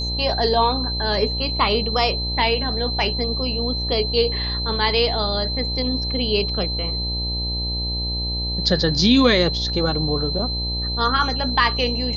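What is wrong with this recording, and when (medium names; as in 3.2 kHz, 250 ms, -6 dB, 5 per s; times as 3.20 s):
buzz 60 Hz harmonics 17 -27 dBFS
whine 4.1 kHz -25 dBFS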